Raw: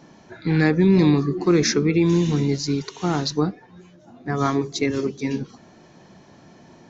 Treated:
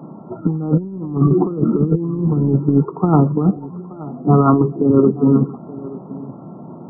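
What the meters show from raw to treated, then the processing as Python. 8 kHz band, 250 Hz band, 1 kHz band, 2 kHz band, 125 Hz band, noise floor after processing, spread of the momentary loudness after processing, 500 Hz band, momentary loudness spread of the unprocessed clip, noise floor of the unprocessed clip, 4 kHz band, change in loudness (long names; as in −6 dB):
can't be measured, +5.0 dB, +6.0 dB, below −15 dB, +6.5 dB, −36 dBFS, 18 LU, +4.0 dB, 11 LU, −51 dBFS, below −40 dB, +4.5 dB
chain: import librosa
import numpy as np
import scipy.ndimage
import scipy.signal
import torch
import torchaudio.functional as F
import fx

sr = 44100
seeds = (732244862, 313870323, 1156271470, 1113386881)

y = scipy.signal.sosfilt(scipy.signal.butter(4, 140.0, 'highpass', fs=sr, output='sos'), x)
y = fx.low_shelf(y, sr, hz=200.0, db=11.5)
y = fx.over_compress(y, sr, threshold_db=-19.0, ratio=-0.5)
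y = fx.brickwall_lowpass(y, sr, high_hz=1400.0)
y = y + 10.0 ** (-18.0 / 20.0) * np.pad(y, (int(878 * sr / 1000.0), 0))[:len(y)]
y = y * 10.0 ** (5.5 / 20.0)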